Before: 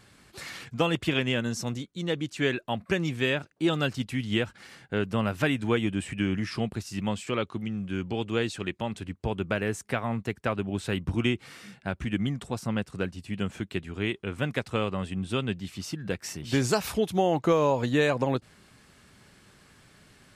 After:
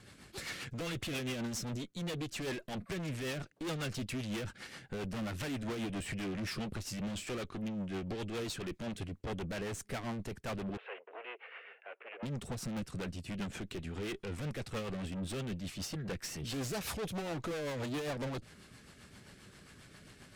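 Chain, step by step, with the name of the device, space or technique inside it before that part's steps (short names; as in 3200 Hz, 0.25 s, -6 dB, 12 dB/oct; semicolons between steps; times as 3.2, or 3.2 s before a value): overdriven rotary cabinet (tube stage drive 39 dB, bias 0.5; rotary speaker horn 7.5 Hz); 10.77–12.23 Chebyshev band-pass 440–2800 Hz, order 4; gain +4.5 dB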